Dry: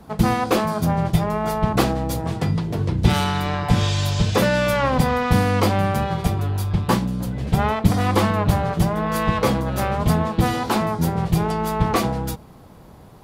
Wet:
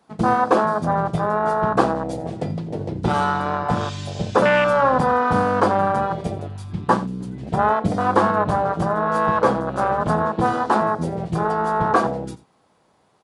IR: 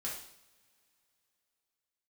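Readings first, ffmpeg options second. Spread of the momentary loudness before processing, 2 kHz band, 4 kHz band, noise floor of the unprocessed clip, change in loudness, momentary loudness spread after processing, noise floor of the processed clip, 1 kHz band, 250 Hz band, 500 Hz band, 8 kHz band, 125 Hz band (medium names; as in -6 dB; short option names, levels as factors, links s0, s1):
5 LU, +2.0 dB, -8.0 dB, -44 dBFS, +0.5 dB, 11 LU, -61 dBFS, +4.5 dB, -2.5 dB, +3.0 dB, no reading, -7.0 dB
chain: -af "afwtdn=0.0891,highpass=f=670:p=1,aecho=1:1:86:0.133,aresample=22050,aresample=44100,volume=2.37"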